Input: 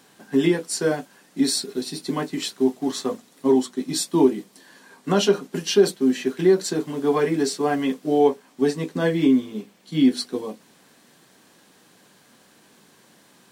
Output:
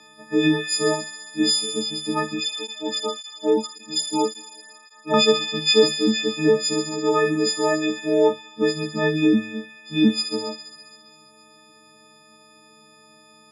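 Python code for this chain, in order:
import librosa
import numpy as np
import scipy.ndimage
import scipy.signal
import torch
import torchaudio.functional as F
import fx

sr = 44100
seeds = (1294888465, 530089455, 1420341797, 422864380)

y = fx.freq_snap(x, sr, grid_st=6)
y = scipy.signal.sosfilt(scipy.signal.butter(2, 4200.0, 'lowpass', fs=sr, output='sos'), y)
y = fx.hum_notches(y, sr, base_hz=50, count=3)
y = fx.echo_wet_highpass(y, sr, ms=67, feedback_pct=80, hz=2200.0, wet_db=-6.0)
y = fx.flanger_cancel(y, sr, hz=1.8, depth_ms=1.0, at=(2.4, 5.14))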